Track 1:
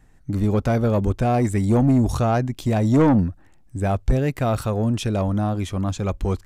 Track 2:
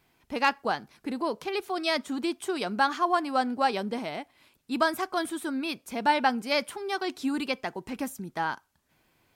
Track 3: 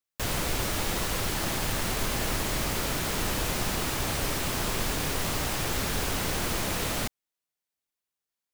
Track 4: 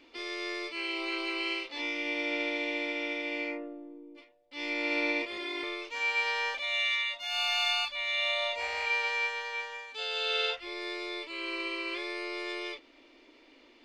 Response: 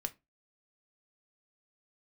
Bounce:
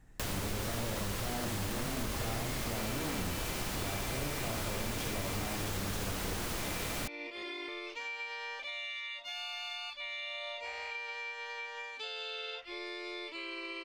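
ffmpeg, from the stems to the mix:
-filter_complex "[0:a]asoftclip=type=hard:threshold=-25.5dB,volume=-6dB,asplit=2[link_01][link_02];[link_02]volume=-3dB[link_03];[2:a]volume=0dB[link_04];[3:a]acompressor=threshold=-39dB:ratio=6,adelay=2050,volume=1.5dB[link_05];[link_03]aecho=0:1:70:1[link_06];[link_01][link_04][link_05][link_06]amix=inputs=4:normalize=0,acompressor=threshold=-37dB:ratio=2.5"

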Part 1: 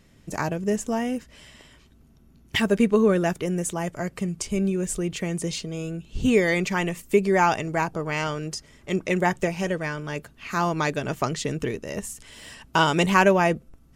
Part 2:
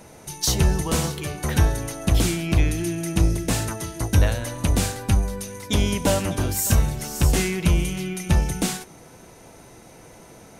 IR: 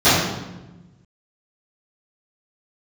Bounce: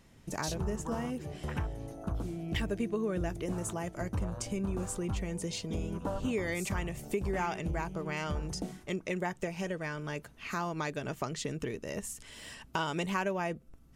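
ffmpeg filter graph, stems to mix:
-filter_complex "[0:a]volume=-4dB[link_01];[1:a]afwtdn=0.0398,equalizer=frequency=1100:width_type=o:width=1:gain=6,volume=-9.5dB[link_02];[link_01][link_02]amix=inputs=2:normalize=0,acompressor=threshold=-34dB:ratio=2.5"

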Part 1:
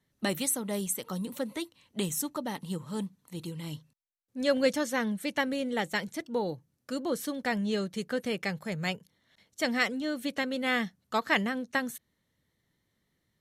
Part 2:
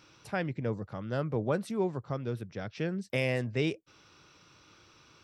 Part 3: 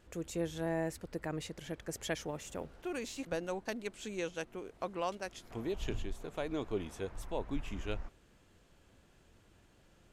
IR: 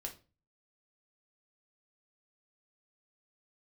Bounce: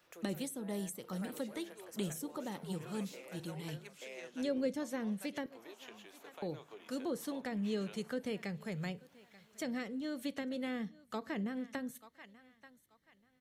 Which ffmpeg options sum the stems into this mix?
-filter_complex "[0:a]volume=-7dB,asplit=3[link_01][link_02][link_03];[link_01]atrim=end=5.46,asetpts=PTS-STARTPTS,afade=type=out:start_time=5.456:duration=0.004:curve=hsin[link_04];[link_02]atrim=start=5.46:end=6.42,asetpts=PTS-STARTPTS,volume=0[link_05];[link_03]atrim=start=6.42,asetpts=PTS-STARTPTS,afade=type=in:duration=0.004:curve=hsin[link_06];[link_04][link_05][link_06]concat=n=3:v=0:a=1,asplit=3[link_07][link_08][link_09];[link_08]volume=-9dB[link_10];[link_09]volume=-22.5dB[link_11];[1:a]highpass=frequency=340:width=0.5412,highpass=frequency=340:width=1.3066,volume=-14.5dB,asplit=2[link_12][link_13];[link_13]volume=-3.5dB[link_14];[2:a]highpass=650,highshelf=frequency=11000:gain=11.5,volume=-2dB,asplit=3[link_15][link_16][link_17];[link_16]volume=-17dB[link_18];[link_17]volume=-23.5dB[link_19];[link_12][link_15]amix=inputs=2:normalize=0,equalizer=frequency=8000:width_type=o:width=0.85:gain=-8,acompressor=threshold=-51dB:ratio=6,volume=0dB[link_20];[3:a]atrim=start_sample=2205[link_21];[link_10][link_18]amix=inputs=2:normalize=0[link_22];[link_22][link_21]afir=irnorm=-1:irlink=0[link_23];[link_11][link_14][link_19]amix=inputs=3:normalize=0,aecho=0:1:883|1766|2649|3532:1|0.25|0.0625|0.0156[link_24];[link_07][link_20][link_23][link_24]amix=inputs=4:normalize=0,acrossover=split=490[link_25][link_26];[link_26]acompressor=threshold=-43dB:ratio=10[link_27];[link_25][link_27]amix=inputs=2:normalize=0"

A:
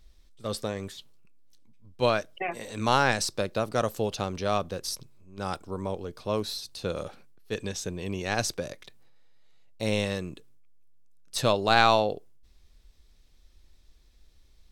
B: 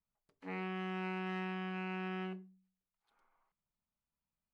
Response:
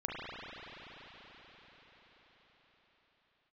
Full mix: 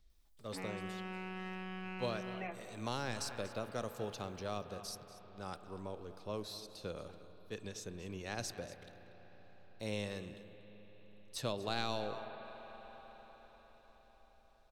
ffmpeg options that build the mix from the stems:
-filter_complex "[0:a]volume=-13.5dB,asplit=3[link_01][link_02][link_03];[link_02]volume=-15.5dB[link_04];[link_03]volume=-15dB[link_05];[1:a]acompressor=threshold=-54dB:ratio=2,highshelf=frequency=4500:gain=9,acontrast=88,adelay=100,volume=-2.5dB[link_06];[2:a]atrim=start_sample=2205[link_07];[link_04][link_07]afir=irnorm=-1:irlink=0[link_08];[link_05]aecho=0:1:238:1[link_09];[link_01][link_06][link_08][link_09]amix=inputs=4:normalize=0,acrossover=split=480|3000[link_10][link_11][link_12];[link_11]acompressor=threshold=-39dB:ratio=6[link_13];[link_10][link_13][link_12]amix=inputs=3:normalize=0"

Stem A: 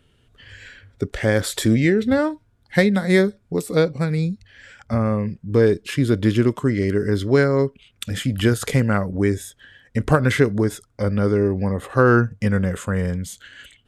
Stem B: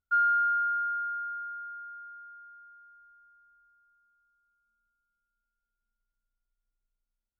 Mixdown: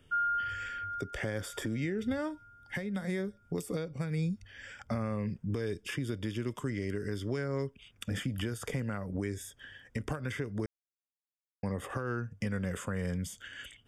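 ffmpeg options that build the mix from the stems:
ffmpeg -i stem1.wav -i stem2.wav -filter_complex "[0:a]acrossover=split=110|1900[link_01][link_02][link_03];[link_01]acompressor=threshold=-37dB:ratio=4[link_04];[link_02]acompressor=threshold=-27dB:ratio=4[link_05];[link_03]acompressor=threshold=-39dB:ratio=4[link_06];[link_04][link_05][link_06]amix=inputs=3:normalize=0,alimiter=limit=-21dB:level=0:latency=1:release=304,volume=-3dB,asplit=3[link_07][link_08][link_09];[link_07]atrim=end=10.66,asetpts=PTS-STARTPTS,afade=type=out:start_time=10.656:duration=0.004:curve=hsin[link_10];[link_08]atrim=start=10.66:end=11.63,asetpts=PTS-STARTPTS,volume=0[link_11];[link_09]atrim=start=11.63,asetpts=PTS-STARTPTS,afade=type=in:duration=0.004:curve=hsin[link_12];[link_10][link_11][link_12]concat=n=3:v=0:a=1,asplit=2[link_13][link_14];[1:a]volume=-6dB[link_15];[link_14]apad=whole_len=326148[link_16];[link_15][link_16]sidechaincompress=threshold=-49dB:ratio=8:attack=16:release=119[link_17];[link_13][link_17]amix=inputs=2:normalize=0,asuperstop=centerf=4100:order=8:qfactor=6.2" out.wav

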